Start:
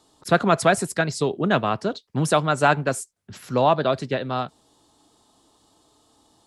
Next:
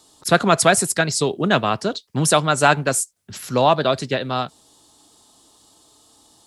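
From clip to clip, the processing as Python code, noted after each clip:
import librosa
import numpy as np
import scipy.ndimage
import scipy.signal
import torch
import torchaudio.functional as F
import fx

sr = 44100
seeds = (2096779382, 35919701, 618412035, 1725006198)

y = fx.high_shelf(x, sr, hz=3500.0, db=10.5)
y = y * 10.0 ** (2.0 / 20.0)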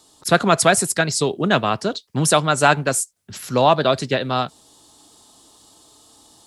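y = fx.rider(x, sr, range_db=3, speed_s=2.0)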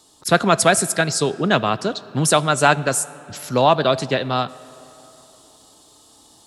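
y = fx.rev_freeverb(x, sr, rt60_s=3.4, hf_ratio=0.6, predelay_ms=10, drr_db=18.5)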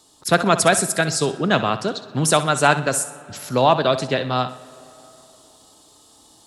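y = fx.echo_feedback(x, sr, ms=63, feedback_pct=36, wet_db=-13.5)
y = y * 10.0 ** (-1.0 / 20.0)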